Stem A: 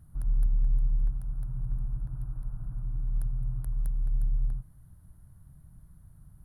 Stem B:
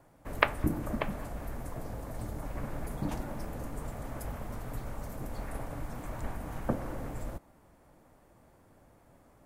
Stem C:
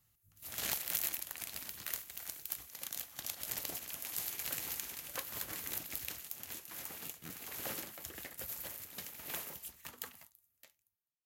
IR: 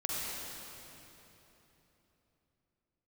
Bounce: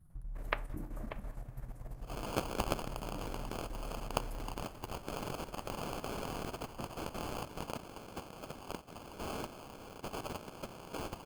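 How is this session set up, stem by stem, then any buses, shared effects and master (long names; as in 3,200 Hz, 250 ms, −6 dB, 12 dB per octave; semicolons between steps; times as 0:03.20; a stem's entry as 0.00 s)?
0.0 dB, 0.00 s, no send, flanger 0.41 Hz, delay 5.3 ms, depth 5.4 ms, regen +55%; downward compressor 6 to 1, threshold −39 dBFS, peak gain reduction 12.5 dB
−9.5 dB, 0.10 s, no send, no processing
−1.0 dB, 1.65 s, no send, high-shelf EQ 5,800 Hz +8 dB; sample-rate reduction 1,900 Hz, jitter 0%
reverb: not used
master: output level in coarse steps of 10 dB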